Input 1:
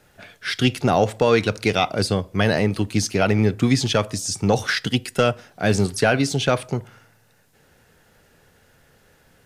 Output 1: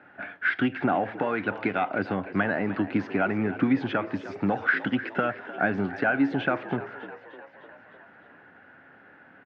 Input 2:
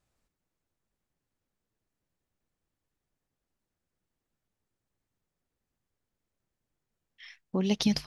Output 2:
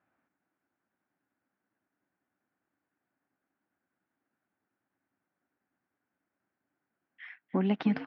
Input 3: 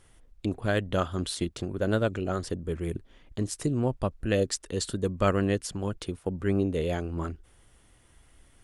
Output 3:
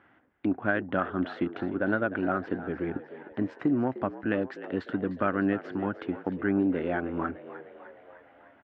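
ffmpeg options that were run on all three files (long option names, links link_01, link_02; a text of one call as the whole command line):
ffmpeg -i in.wav -filter_complex "[0:a]asplit=2[link_01][link_02];[link_02]asoftclip=type=tanh:threshold=-22.5dB,volume=-6dB[link_03];[link_01][link_03]amix=inputs=2:normalize=0,equalizer=frequency=140:width_type=o:width=1.2:gain=-12.5,acompressor=threshold=-25dB:ratio=4,highpass=frequency=110:width=0.5412,highpass=frequency=110:width=1.3066,equalizer=frequency=130:width_type=q:width=4:gain=3,equalizer=frequency=190:width_type=q:width=4:gain=5,equalizer=frequency=280:width_type=q:width=4:gain=9,equalizer=frequency=460:width_type=q:width=4:gain=-6,equalizer=frequency=760:width_type=q:width=4:gain=4,equalizer=frequency=1500:width_type=q:width=4:gain=8,lowpass=frequency=2300:width=0.5412,lowpass=frequency=2300:width=1.3066,asplit=7[link_04][link_05][link_06][link_07][link_08][link_09][link_10];[link_05]adelay=303,afreqshift=67,volume=-15dB[link_11];[link_06]adelay=606,afreqshift=134,volume=-19.6dB[link_12];[link_07]adelay=909,afreqshift=201,volume=-24.2dB[link_13];[link_08]adelay=1212,afreqshift=268,volume=-28.7dB[link_14];[link_09]adelay=1515,afreqshift=335,volume=-33.3dB[link_15];[link_10]adelay=1818,afreqshift=402,volume=-37.9dB[link_16];[link_04][link_11][link_12][link_13][link_14][link_15][link_16]amix=inputs=7:normalize=0" out.wav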